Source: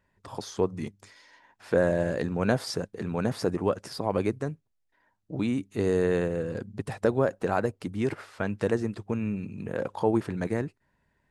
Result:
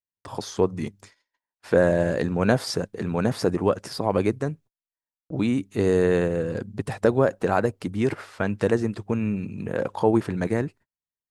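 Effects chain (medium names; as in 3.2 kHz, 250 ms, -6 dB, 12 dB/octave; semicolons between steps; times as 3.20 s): gate -51 dBFS, range -39 dB; trim +4.5 dB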